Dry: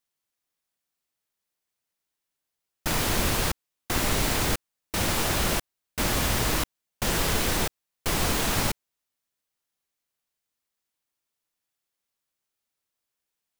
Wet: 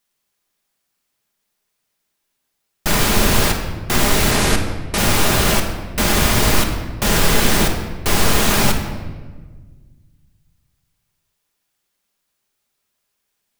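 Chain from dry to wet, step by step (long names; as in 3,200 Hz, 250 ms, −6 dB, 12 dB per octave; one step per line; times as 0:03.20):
0:04.31–0:04.98: Butterworth low-pass 12,000 Hz 48 dB per octave
in parallel at −1.5 dB: brickwall limiter −20 dBFS, peak gain reduction 8.5 dB
on the sum: rectangular room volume 1,300 cubic metres, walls mixed, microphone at 1.3 metres
level +4 dB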